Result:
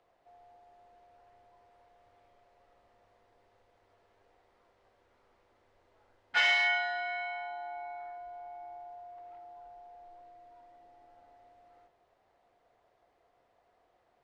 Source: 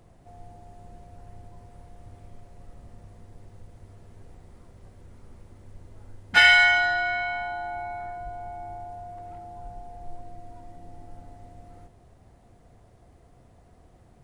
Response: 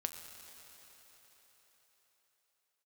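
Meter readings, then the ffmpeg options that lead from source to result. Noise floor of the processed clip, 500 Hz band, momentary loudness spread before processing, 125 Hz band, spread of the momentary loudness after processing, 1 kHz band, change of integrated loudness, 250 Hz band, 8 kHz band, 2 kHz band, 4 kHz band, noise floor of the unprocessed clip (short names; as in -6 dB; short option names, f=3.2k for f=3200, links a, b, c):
-72 dBFS, -8.0 dB, 25 LU, under -25 dB, 25 LU, -9.0 dB, -10.0 dB, under -15 dB, -10.5 dB, -11.0 dB, -9.5 dB, -56 dBFS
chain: -filter_complex "[0:a]volume=13dB,asoftclip=hard,volume=-13dB,acrossover=split=430 4900:gain=0.0631 1 0.1[a][b][c];[a][b][c]amix=inputs=3:normalize=0,bandreject=f=81.18:t=h:w=4,bandreject=f=162.36:t=h:w=4,bandreject=f=243.54:t=h:w=4,bandreject=f=324.72:t=h:w=4,bandreject=f=405.9:t=h:w=4,bandreject=f=487.08:t=h:w=4,bandreject=f=568.26:t=h:w=4,bandreject=f=649.44:t=h:w=4,bandreject=f=730.62:t=h:w=4,bandreject=f=811.8:t=h:w=4,bandreject=f=892.98:t=h:w=4,bandreject=f=974.16:t=h:w=4,bandreject=f=1.05534k:t=h:w=4,bandreject=f=1.13652k:t=h:w=4,bandreject=f=1.2177k:t=h:w=4,bandreject=f=1.29888k:t=h:w=4,bandreject=f=1.38006k:t=h:w=4,bandreject=f=1.46124k:t=h:w=4,bandreject=f=1.54242k:t=h:w=4,bandreject=f=1.6236k:t=h:w=4,bandreject=f=1.70478k:t=h:w=4,bandreject=f=1.78596k:t=h:w=4,bandreject=f=1.86714k:t=h:w=4,bandreject=f=1.94832k:t=h:w=4,bandreject=f=2.0295k:t=h:w=4,bandreject=f=2.11068k:t=h:w=4,bandreject=f=2.19186k:t=h:w=4,bandreject=f=2.27304k:t=h:w=4,bandreject=f=2.35422k:t=h:w=4,bandreject=f=2.4354k:t=h:w=4,bandreject=f=2.51658k:t=h:w=4,bandreject=f=2.59776k:t=h:w=4,volume=-6.5dB"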